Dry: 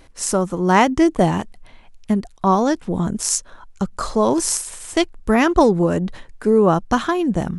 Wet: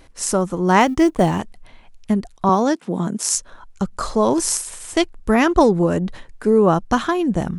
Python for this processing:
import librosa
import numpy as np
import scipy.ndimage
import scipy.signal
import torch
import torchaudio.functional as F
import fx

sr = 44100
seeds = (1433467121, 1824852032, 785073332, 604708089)

y = fx.law_mismatch(x, sr, coded='A', at=(0.8, 1.4))
y = fx.highpass(y, sr, hz=160.0, slope=24, at=(2.49, 3.35))